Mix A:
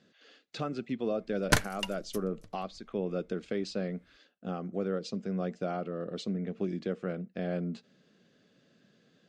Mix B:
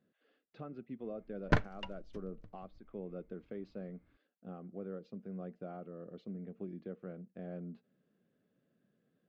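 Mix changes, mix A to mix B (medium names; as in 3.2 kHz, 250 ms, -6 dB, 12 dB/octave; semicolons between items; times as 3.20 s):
speech -9.5 dB; master: add tape spacing loss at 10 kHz 40 dB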